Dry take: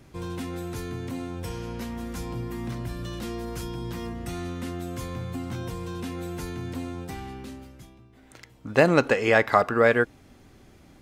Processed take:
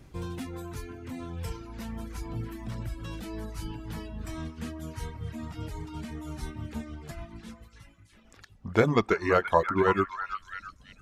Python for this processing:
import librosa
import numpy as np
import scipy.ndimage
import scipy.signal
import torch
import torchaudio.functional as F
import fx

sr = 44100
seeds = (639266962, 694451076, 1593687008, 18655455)

y = fx.pitch_glide(x, sr, semitones=-4.0, runs='starting unshifted')
y = fx.low_shelf(y, sr, hz=75.0, db=10.0)
y = fx.echo_stepped(y, sr, ms=334, hz=1200.0, octaves=0.7, feedback_pct=70, wet_db=-4)
y = fx.dereverb_blind(y, sr, rt60_s=1.0)
y = F.gain(torch.from_numpy(y), -2.5).numpy()